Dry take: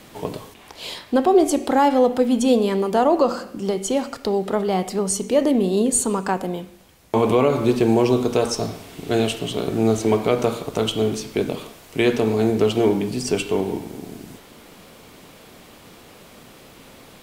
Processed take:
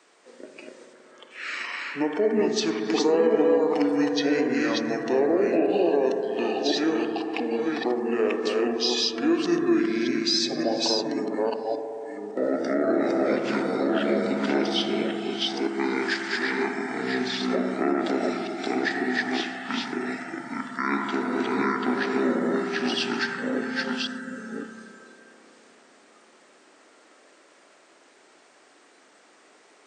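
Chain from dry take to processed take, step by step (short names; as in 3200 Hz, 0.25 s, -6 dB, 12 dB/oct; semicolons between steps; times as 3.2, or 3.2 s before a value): reverse delay 0.323 s, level -1.5 dB; HPF 580 Hz 24 dB/oct; limiter -14.5 dBFS, peak gain reduction 9.5 dB; spring tank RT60 3 s, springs 36 ms, chirp 55 ms, DRR 3 dB; spectral noise reduction 11 dB; speed mistake 78 rpm record played at 45 rpm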